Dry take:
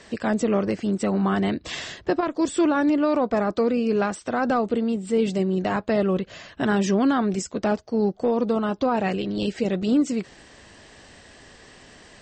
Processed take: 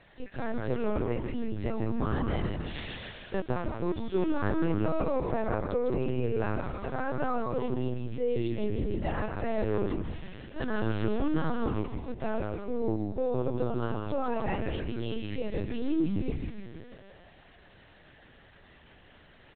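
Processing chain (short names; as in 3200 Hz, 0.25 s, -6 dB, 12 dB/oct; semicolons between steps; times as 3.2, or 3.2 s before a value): dynamic EQ 940 Hz, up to -3 dB, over -43 dBFS, Q 5.5; time stretch by phase-locked vocoder 1.6×; frequency shift +31 Hz; on a send: frequency-shifting echo 0.155 s, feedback 59%, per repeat -130 Hz, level -4 dB; on the sum: LPC vocoder at 8 kHz pitch kept; gain -8.5 dB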